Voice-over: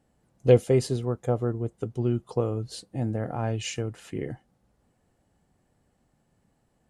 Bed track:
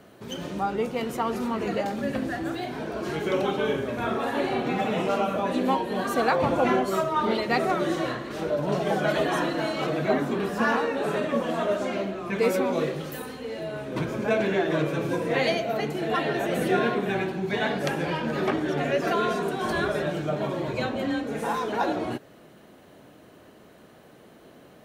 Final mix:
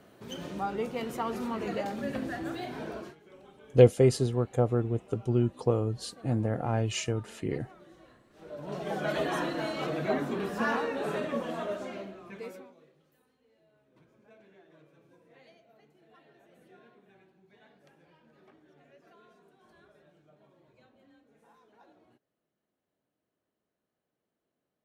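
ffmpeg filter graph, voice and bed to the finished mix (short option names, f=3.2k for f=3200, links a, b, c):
-filter_complex "[0:a]adelay=3300,volume=0dB[a];[1:a]volume=18dB,afade=t=out:st=2.91:d=0.24:silence=0.0668344,afade=t=in:st=8.33:d=0.87:silence=0.0668344,afade=t=out:st=11.15:d=1.6:silence=0.0354813[b];[a][b]amix=inputs=2:normalize=0"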